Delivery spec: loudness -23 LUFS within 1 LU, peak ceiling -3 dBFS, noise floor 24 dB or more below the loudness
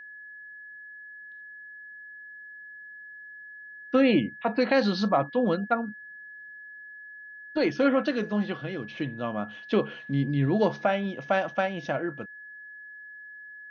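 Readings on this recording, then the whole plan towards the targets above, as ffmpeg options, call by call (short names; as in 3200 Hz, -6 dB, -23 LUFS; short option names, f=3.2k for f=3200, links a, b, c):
steady tone 1700 Hz; tone level -42 dBFS; loudness -27.0 LUFS; peak -9.5 dBFS; loudness target -23.0 LUFS
-> -af "bandreject=f=1.7k:w=30"
-af "volume=4dB"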